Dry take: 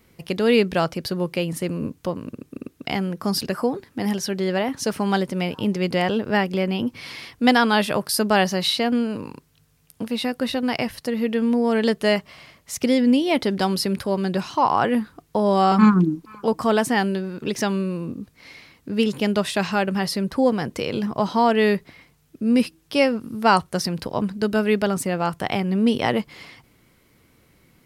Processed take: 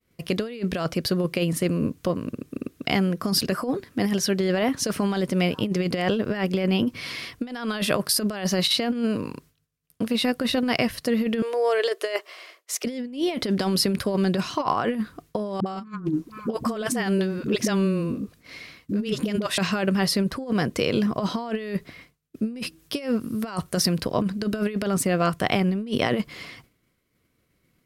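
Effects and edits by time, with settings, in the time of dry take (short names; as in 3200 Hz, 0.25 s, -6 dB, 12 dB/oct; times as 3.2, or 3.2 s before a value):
11.42–12.85 elliptic high-pass 350 Hz
15.6–19.58 dispersion highs, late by 61 ms, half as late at 320 Hz
22.79–23.98 high shelf 9500 Hz +6.5 dB
whole clip: expander -47 dBFS; notch 860 Hz, Q 5.3; negative-ratio compressor -23 dBFS, ratio -0.5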